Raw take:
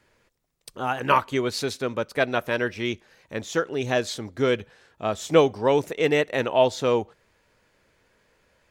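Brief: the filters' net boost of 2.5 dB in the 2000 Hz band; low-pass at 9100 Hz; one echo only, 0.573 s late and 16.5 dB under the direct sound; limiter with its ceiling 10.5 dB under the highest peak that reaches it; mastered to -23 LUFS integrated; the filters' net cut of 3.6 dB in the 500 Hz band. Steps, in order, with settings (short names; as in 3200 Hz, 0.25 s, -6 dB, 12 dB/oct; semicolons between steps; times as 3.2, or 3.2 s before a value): LPF 9100 Hz; bell 500 Hz -4.5 dB; bell 2000 Hz +3.5 dB; limiter -15.5 dBFS; echo 0.573 s -16.5 dB; gain +6 dB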